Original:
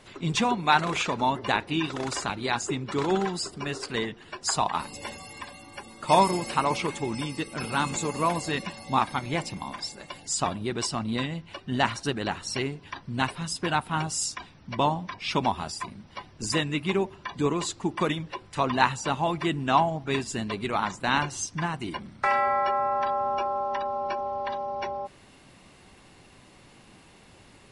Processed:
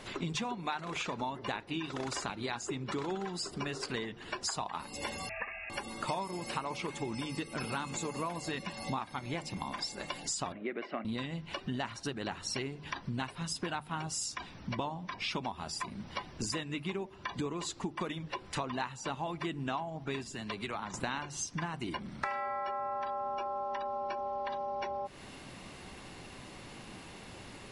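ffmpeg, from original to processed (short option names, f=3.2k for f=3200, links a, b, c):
-filter_complex "[0:a]asettb=1/sr,asplit=3[a][b][c];[a]atrim=end=5.294[d];[b]atrim=start=5.29:end=5.7,asetpts=PTS-STARTPTS,afade=t=in:d=0.004:c=qsin,afade=t=out:st=0.406:d=0.004:c=qsin,lowpass=f=2.4k:t=q:w=0.5098,lowpass=f=2.4k:t=q:w=0.6013,lowpass=f=2.4k:t=q:w=0.9,lowpass=f=2.4k:t=q:w=2.563,afreqshift=-2800[e];[c]atrim=start=5.696[f];[d][e]acrossfade=d=0.004:c1=hsin:c2=qsin[g];[g][f]acrossfade=d=0.004:c1=qsin:c2=hsin,asettb=1/sr,asplit=3[h][i][j];[h]atrim=end=10.524[k];[i]atrim=start=10.52:end=11.05,asetpts=PTS-STARTPTS,afade=t=in:d=0.004:c=qsin,afade=t=out:st=0.526:d=0.004:c=qsin,highpass=f=240:w=0.5412,highpass=f=240:w=1.3066,equalizer=f=590:t=q:w=4:g=7,equalizer=f=930:t=q:w=4:g=-10,equalizer=f=2.1k:t=q:w=4:g=9,lowpass=f=2.4k:w=0.5412,lowpass=f=2.4k:w=1.3066[l];[j]atrim=start=11.046[m];[k][l]acrossfade=d=0.004:c1=hsin:c2=qsin[n];[n][m]acrossfade=d=0.004:c1=qsin:c2=hsin,asettb=1/sr,asplit=3[o][p][q];[o]atrim=end=20.274[r];[p]atrim=start=20.27:end=20.94,asetpts=PTS-STARTPTS,afade=t=in:d=0.004:c=qsin,afade=t=out:st=0.666:d=0.004:c=qsin,acrossover=split=120|690[s][t][u];[s]acompressor=threshold=-55dB:ratio=4[v];[t]acompressor=threshold=-45dB:ratio=4[w];[u]acompressor=threshold=-41dB:ratio=4[x];[v][w][x]amix=inputs=3:normalize=0[y];[q]atrim=start=20.936[z];[r][y]acrossfade=d=0.004:c1=hsin:c2=qsin[aa];[aa][z]acrossfade=d=0.004:c1=qsin:c2=hsin,equalizer=f=8.7k:t=o:w=0.34:g=-3.5,bandreject=f=50:t=h:w=6,bandreject=f=100:t=h:w=6,bandreject=f=150:t=h:w=6,acompressor=threshold=-39dB:ratio=8,volume=5dB"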